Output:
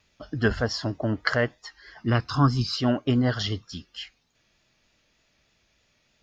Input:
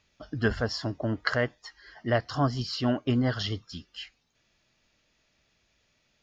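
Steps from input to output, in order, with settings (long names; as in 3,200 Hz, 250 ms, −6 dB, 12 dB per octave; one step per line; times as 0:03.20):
0:01.97–0:02.77: comb filter 0.8 ms, depth 70%
pitch vibrato 3.3 Hz 37 cents
level +3 dB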